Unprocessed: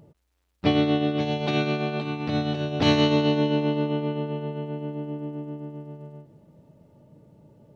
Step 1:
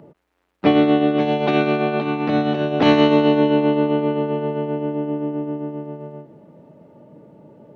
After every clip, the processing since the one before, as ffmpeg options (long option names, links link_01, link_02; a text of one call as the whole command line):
ffmpeg -i in.wav -filter_complex "[0:a]acrossover=split=180 2600:gain=0.126 1 0.2[link_01][link_02][link_03];[link_01][link_02][link_03]amix=inputs=3:normalize=0,asplit=2[link_04][link_05];[link_05]acompressor=threshold=-31dB:ratio=6,volume=-1.5dB[link_06];[link_04][link_06]amix=inputs=2:normalize=0,volume=6dB" out.wav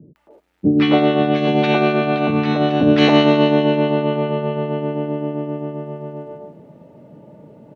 ffmpeg -i in.wav -filter_complex "[0:a]acrossover=split=350|1200[link_01][link_02][link_03];[link_03]adelay=160[link_04];[link_02]adelay=270[link_05];[link_01][link_05][link_04]amix=inputs=3:normalize=0,volume=4.5dB" out.wav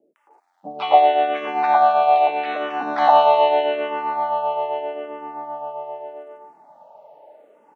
ffmpeg -i in.wav -filter_complex "[0:a]acrossover=split=2900[link_01][link_02];[link_02]acompressor=threshold=-39dB:ratio=4:attack=1:release=60[link_03];[link_01][link_03]amix=inputs=2:normalize=0,highpass=frequency=780:width_type=q:width=4.8,asplit=2[link_04][link_05];[link_05]afreqshift=-0.81[link_06];[link_04][link_06]amix=inputs=2:normalize=1,volume=-1dB" out.wav